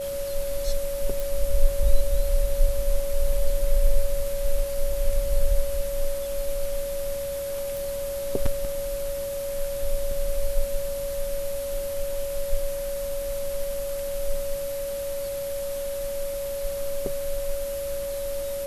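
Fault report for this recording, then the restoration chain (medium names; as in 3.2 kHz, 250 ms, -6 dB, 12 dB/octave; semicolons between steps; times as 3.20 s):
whine 560 Hz -28 dBFS
1.20 s: pop
7.77 s: pop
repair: de-click; band-stop 560 Hz, Q 30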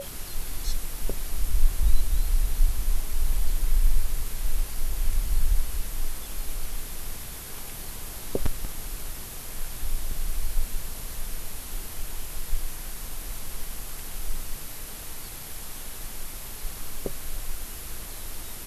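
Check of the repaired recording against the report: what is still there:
nothing left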